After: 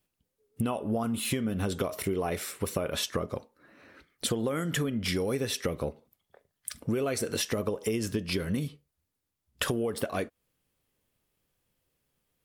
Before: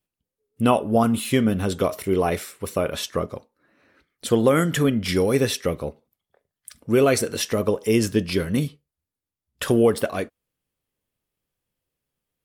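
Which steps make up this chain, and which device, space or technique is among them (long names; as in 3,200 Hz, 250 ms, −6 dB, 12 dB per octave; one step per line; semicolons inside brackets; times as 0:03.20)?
serial compression, leveller first (downward compressor 2.5 to 1, threshold −21 dBFS, peak gain reduction 6.5 dB; downward compressor 5 to 1, threshold −33 dBFS, peak gain reduction 13.5 dB)
level +5 dB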